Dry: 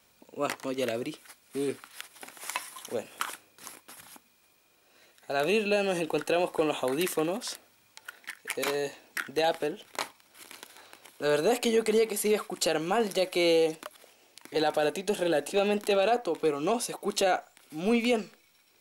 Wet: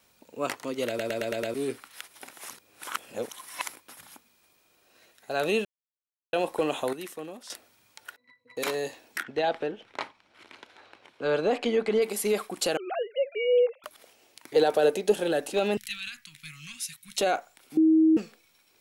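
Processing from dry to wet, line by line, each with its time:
0:00.88: stutter in place 0.11 s, 6 plays
0:02.49–0:03.68: reverse
0:05.65–0:06.33: silence
0:06.93–0:07.50: clip gain −10.5 dB
0:08.16–0:08.57: resonances in every octave B, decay 0.14 s
0:09.23–0:12.02: low-pass filter 3,400 Hz
0:12.77–0:13.84: three sine waves on the formant tracks
0:14.54–0:15.12: parametric band 450 Hz +8.5 dB 0.6 octaves
0:15.77–0:17.18: Chebyshev band-stop filter 140–1,900 Hz, order 3
0:17.77–0:18.17: beep over 318 Hz −16 dBFS

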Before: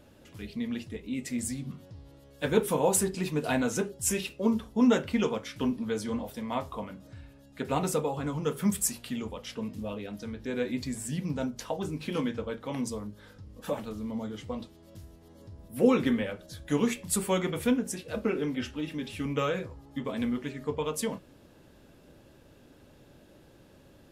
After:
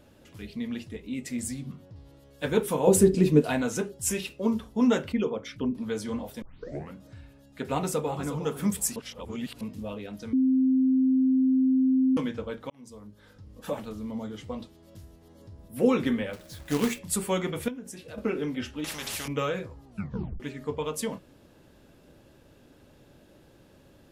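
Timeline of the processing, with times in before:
0:01.19–0:01.96: one half of a high-frequency compander decoder only
0:02.87–0:03.42: low shelf with overshoot 610 Hz +9.5 dB, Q 1.5
0:05.12–0:05.75: spectral envelope exaggerated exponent 1.5
0:06.42: tape start 0.52 s
0:07.67–0:08.33: delay throw 360 ms, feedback 20%, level −10.5 dB
0:08.96–0:09.61: reverse
0:10.33–0:12.17: beep over 261 Hz −19 dBFS
0:12.70–0:13.53: fade in
0:16.33–0:16.99: log-companded quantiser 4 bits
0:17.68–0:18.18: downward compressor 2.5 to 1, threshold −41 dBFS
0:18.84–0:19.28: every bin compressed towards the loudest bin 4 to 1
0:19.85: tape stop 0.55 s

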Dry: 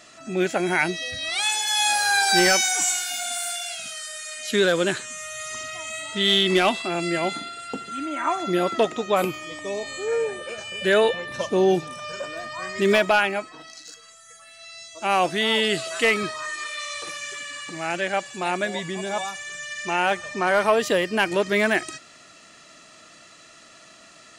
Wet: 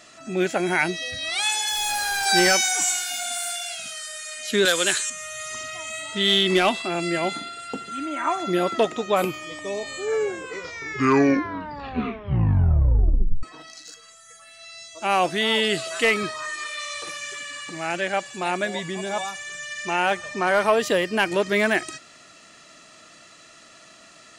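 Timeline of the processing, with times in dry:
0:01.69–0:02.26: hard clipping −23 dBFS
0:04.65–0:05.10: spectral tilt +4 dB per octave
0:09.99: tape stop 3.44 s

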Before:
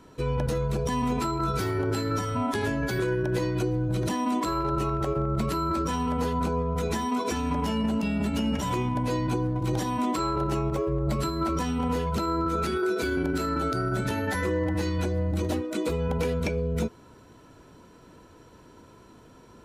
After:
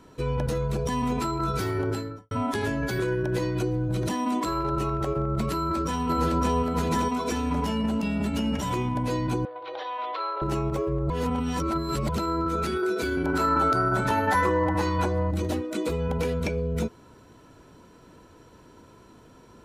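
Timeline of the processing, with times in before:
0:01.83–0:02.31: fade out and dull
0:05.53–0:06.52: delay throw 560 ms, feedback 30%, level −1 dB
0:09.45–0:10.42: elliptic band-pass filter 500–3,800 Hz
0:11.10–0:12.09: reverse
0:13.26–0:15.31: parametric band 990 Hz +13 dB 1.1 octaves

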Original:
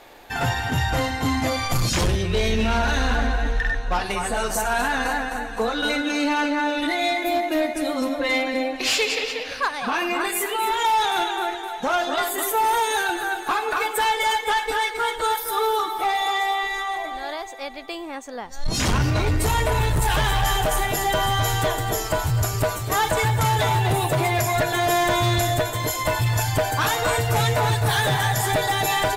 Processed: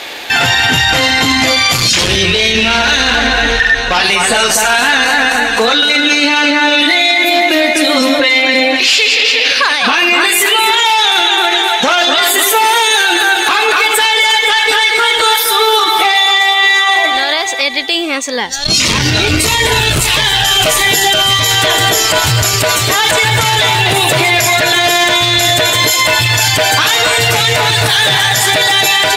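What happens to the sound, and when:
0:17.61–0:21.51: phaser whose notches keep moving one way falling 1.6 Hz
whole clip: meter weighting curve D; boost into a limiter +18 dB; level −1 dB

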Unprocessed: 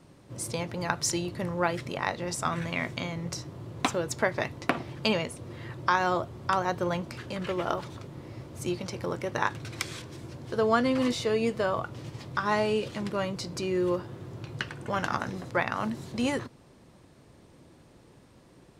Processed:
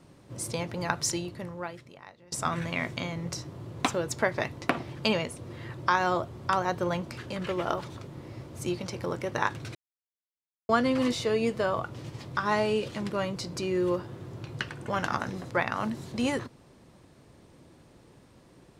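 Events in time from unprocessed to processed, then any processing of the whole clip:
0:01.02–0:02.32: fade out quadratic, to −22.5 dB
0:09.75–0:10.69: silence

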